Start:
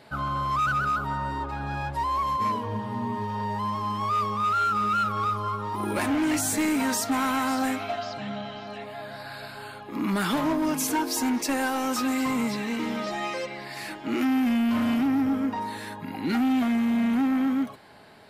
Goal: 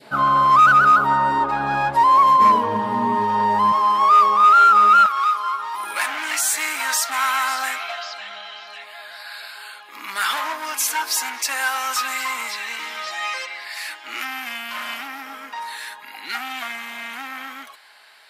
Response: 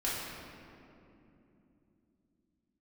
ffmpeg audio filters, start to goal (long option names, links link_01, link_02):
-af "asetnsamples=nb_out_samples=441:pad=0,asendcmd='3.72 highpass f 460;5.06 highpass f 1500',highpass=200,adynamicequalizer=threshold=0.01:dfrequency=1100:dqfactor=0.77:tfrequency=1100:tqfactor=0.77:attack=5:release=100:ratio=0.375:range=3:mode=boostabove:tftype=bell,volume=7.5dB"